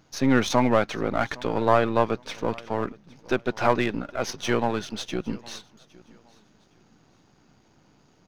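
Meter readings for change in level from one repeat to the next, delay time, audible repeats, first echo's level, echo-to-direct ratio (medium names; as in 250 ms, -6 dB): -11.5 dB, 812 ms, 2, -23.0 dB, -22.5 dB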